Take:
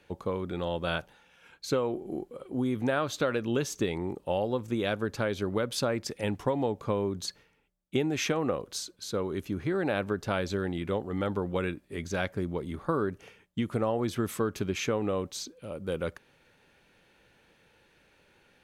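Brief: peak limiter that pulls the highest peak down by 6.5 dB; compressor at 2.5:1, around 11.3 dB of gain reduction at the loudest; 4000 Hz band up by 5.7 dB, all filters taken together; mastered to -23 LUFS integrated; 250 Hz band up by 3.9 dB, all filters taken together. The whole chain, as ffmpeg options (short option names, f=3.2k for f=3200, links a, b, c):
-af "equalizer=f=250:t=o:g=5,equalizer=f=4k:t=o:g=7,acompressor=threshold=-39dB:ratio=2.5,volume=17dB,alimiter=limit=-11dB:level=0:latency=1"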